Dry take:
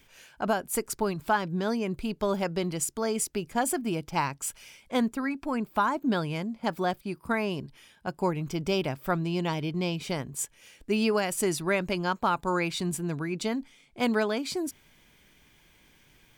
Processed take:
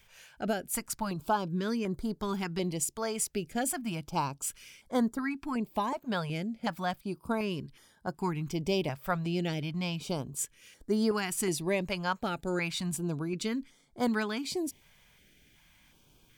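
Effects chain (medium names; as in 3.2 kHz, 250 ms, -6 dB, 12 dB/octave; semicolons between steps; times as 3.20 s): step-sequenced notch 2.7 Hz 300–2600 Hz; trim -1.5 dB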